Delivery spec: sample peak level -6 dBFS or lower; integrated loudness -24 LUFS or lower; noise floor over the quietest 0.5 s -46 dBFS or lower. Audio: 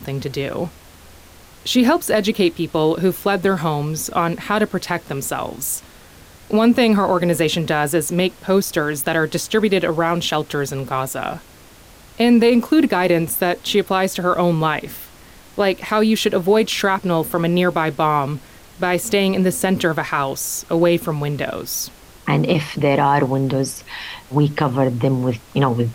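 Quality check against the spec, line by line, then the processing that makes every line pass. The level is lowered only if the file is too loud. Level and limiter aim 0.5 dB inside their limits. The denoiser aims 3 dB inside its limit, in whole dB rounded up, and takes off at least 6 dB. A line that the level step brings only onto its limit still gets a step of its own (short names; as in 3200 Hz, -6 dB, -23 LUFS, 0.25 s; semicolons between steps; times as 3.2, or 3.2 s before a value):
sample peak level -5.0 dBFS: fail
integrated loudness -18.5 LUFS: fail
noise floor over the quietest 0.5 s -44 dBFS: fail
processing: gain -6 dB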